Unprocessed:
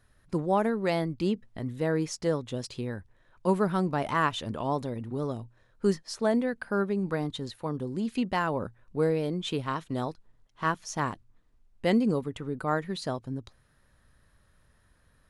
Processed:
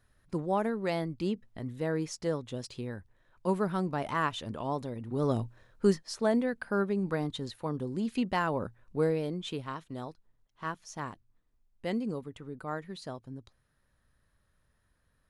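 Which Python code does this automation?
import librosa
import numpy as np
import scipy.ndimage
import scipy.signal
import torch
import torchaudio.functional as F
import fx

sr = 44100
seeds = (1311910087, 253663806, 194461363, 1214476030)

y = fx.gain(x, sr, db=fx.line((5.02, -4.0), (5.38, 7.0), (6.04, -1.5), (8.99, -1.5), (9.89, -8.5)))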